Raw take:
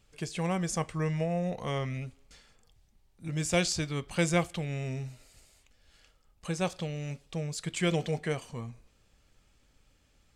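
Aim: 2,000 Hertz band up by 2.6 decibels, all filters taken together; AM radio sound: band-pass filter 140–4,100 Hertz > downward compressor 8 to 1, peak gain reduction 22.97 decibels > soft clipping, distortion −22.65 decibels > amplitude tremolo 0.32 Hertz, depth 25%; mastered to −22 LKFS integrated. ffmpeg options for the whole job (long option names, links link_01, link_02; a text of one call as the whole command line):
ffmpeg -i in.wav -af "highpass=140,lowpass=4100,equalizer=frequency=2000:width_type=o:gain=3.5,acompressor=threshold=-44dB:ratio=8,asoftclip=threshold=-33.5dB,tremolo=f=0.32:d=0.25,volume=29dB" out.wav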